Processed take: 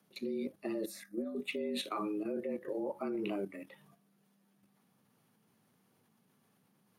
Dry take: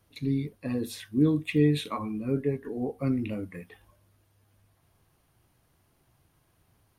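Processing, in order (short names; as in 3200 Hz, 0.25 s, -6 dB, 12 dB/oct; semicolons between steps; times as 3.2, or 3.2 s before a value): 2.9–3.36 bell 940 Hz +11.5 dB 0.88 oct; frequency shift +98 Hz; limiter -21 dBFS, peak gain reduction 9.5 dB; level quantiser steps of 9 dB; 0.86–1.35 fixed phaser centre 620 Hz, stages 8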